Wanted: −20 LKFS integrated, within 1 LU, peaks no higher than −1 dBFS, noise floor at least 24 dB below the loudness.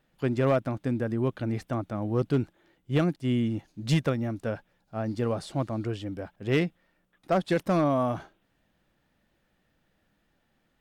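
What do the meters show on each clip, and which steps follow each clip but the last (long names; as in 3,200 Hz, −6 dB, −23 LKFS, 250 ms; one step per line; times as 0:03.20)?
share of clipped samples 0.4%; peaks flattened at −17.0 dBFS; integrated loudness −29.0 LKFS; sample peak −17.0 dBFS; target loudness −20.0 LKFS
→ clipped peaks rebuilt −17 dBFS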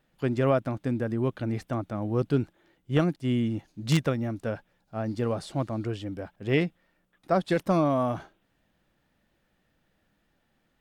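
share of clipped samples 0.0%; integrated loudness −28.5 LKFS; sample peak −8.0 dBFS; target loudness −20.0 LKFS
→ level +8.5 dB
brickwall limiter −1 dBFS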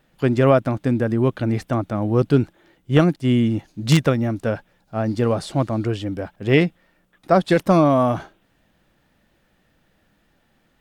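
integrated loudness −20.0 LKFS; sample peak −1.0 dBFS; background noise floor −64 dBFS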